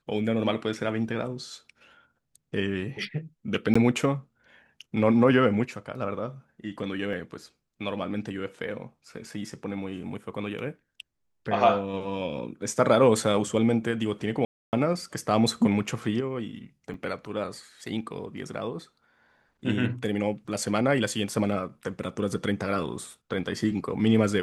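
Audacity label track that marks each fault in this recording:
3.740000	3.750000	gap 15 ms
7.130000	7.130000	gap 3 ms
14.450000	14.730000	gap 0.279 s
16.940000	16.940000	gap 2.5 ms

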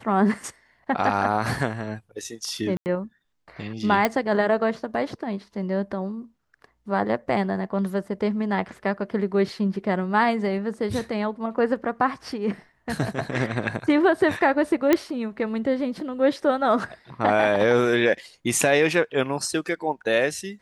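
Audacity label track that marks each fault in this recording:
2.770000	2.860000	gap 89 ms
4.050000	4.050000	pop -6 dBFS
14.930000	14.930000	pop -5 dBFS

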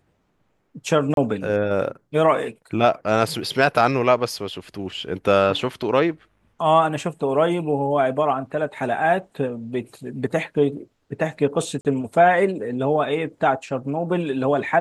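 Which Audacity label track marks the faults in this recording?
1.140000	1.170000	gap 32 ms
11.810000	11.850000	gap 38 ms

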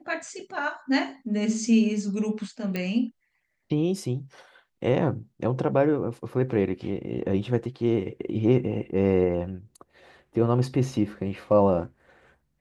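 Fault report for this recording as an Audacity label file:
2.760000	2.760000	pop -16 dBFS

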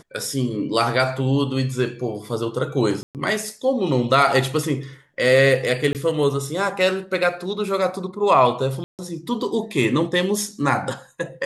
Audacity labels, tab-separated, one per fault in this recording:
3.030000	3.150000	gap 0.118 s
5.930000	5.950000	gap 18 ms
8.840000	8.990000	gap 0.148 s

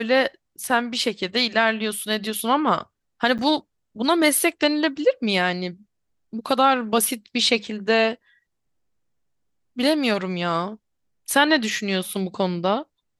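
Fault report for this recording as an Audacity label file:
3.380000	3.390000	gap 8 ms

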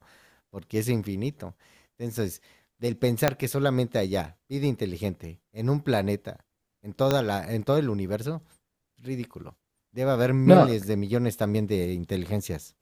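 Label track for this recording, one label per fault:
3.280000	3.280000	pop -6 dBFS
7.110000	7.110000	pop -9 dBFS

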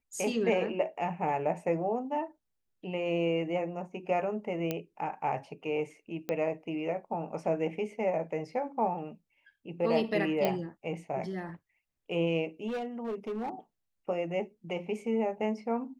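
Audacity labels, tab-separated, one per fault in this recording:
4.710000	4.710000	pop -17 dBFS
6.290000	6.290000	pop -19 dBFS
10.450000	10.450000	pop -15 dBFS
12.670000	13.490000	clipped -31 dBFS

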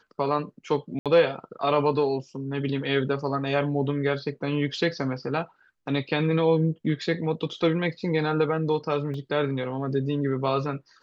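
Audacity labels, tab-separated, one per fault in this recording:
0.990000	1.060000	gap 67 ms
9.140000	9.140000	gap 2.7 ms

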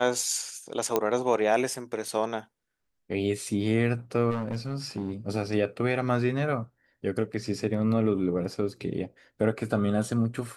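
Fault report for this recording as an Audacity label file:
0.960000	0.960000	pop -10 dBFS
4.300000	5.120000	clipped -25.5 dBFS

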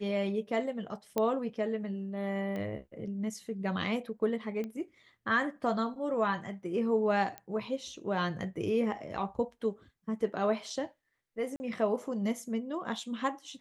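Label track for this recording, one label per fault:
1.180000	1.180000	pop -16 dBFS
2.560000	2.560000	pop -27 dBFS
4.640000	4.640000	pop -26 dBFS
7.380000	7.380000	pop -24 dBFS
11.560000	11.600000	gap 40 ms

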